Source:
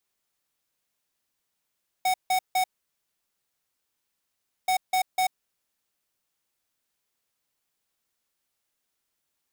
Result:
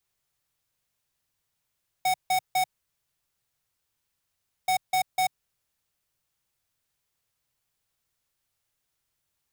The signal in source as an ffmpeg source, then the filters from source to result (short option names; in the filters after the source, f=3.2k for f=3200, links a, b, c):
-f lavfi -i "aevalsrc='0.0708*(2*lt(mod(745*t,1),0.5)-1)*clip(min(mod(mod(t,2.63),0.25),0.09-mod(mod(t,2.63),0.25))/0.005,0,1)*lt(mod(t,2.63),0.75)':d=5.26:s=44100"
-af "lowshelf=f=170:t=q:w=1.5:g=7.5"